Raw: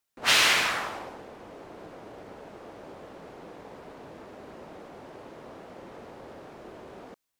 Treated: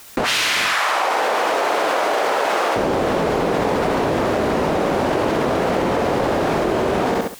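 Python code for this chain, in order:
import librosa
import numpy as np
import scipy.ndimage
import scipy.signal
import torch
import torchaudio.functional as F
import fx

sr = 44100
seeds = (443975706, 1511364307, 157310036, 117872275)

y = fx.highpass(x, sr, hz=680.0, slope=12, at=(0.66, 2.76))
y = fx.echo_feedback(y, sr, ms=67, feedback_pct=28, wet_db=-7.0)
y = fx.env_flatten(y, sr, amount_pct=100)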